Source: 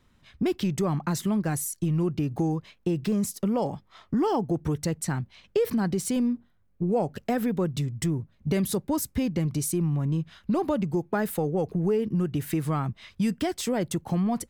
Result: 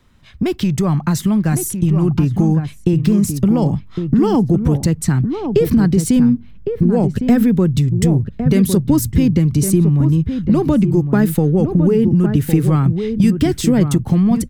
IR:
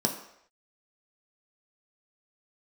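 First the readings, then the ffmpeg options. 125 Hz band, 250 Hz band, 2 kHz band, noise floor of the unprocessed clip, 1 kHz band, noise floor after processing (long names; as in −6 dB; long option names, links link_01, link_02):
+14.5 dB, +13.0 dB, +7.5 dB, −64 dBFS, +5.0 dB, −37 dBFS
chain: -filter_complex "[0:a]asubboost=boost=9:cutoff=220,acrossover=split=360|1800[link_01][link_02][link_03];[link_01]acompressor=threshold=-22dB:ratio=6[link_04];[link_04][link_02][link_03]amix=inputs=3:normalize=0,asplit=2[link_05][link_06];[link_06]adelay=1108,volume=-7dB,highshelf=frequency=4000:gain=-24.9[link_07];[link_05][link_07]amix=inputs=2:normalize=0,volume=8dB"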